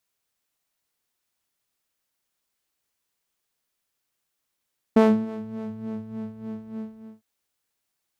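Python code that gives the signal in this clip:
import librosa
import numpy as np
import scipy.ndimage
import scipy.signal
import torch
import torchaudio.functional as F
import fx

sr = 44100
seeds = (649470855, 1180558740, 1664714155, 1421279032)

y = fx.sub_patch_wobble(sr, seeds[0], note=57, wave='saw', wave2='saw', interval_st=-12, level2_db=-16.0, sub_db=-24.5, noise_db=-15, kind='bandpass', cutoff_hz=100.0, q=0.87, env_oct=1.5, env_decay_s=1.34, env_sustain_pct=0, attack_ms=8.4, decay_s=0.29, sustain_db=-19.0, release_s=0.45, note_s=1.81, lfo_hz=3.4, wobble_oct=1.0)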